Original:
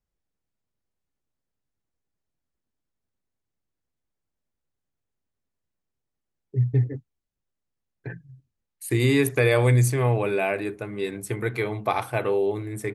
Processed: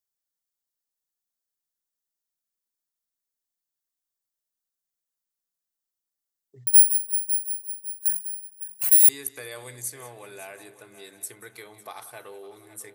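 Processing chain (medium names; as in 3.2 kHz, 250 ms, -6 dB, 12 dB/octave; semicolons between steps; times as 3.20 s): peaking EQ 2.4 kHz -8.5 dB 0.56 oct; multi-head delay 184 ms, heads first and third, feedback 42%, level -17.5 dB; compression 1.5:1, threshold -39 dBFS, peak gain reduction 8.5 dB; 6.67–9.09 s: careless resampling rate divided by 4×, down none, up zero stuff; tilt EQ +4.5 dB/octave; trim -8 dB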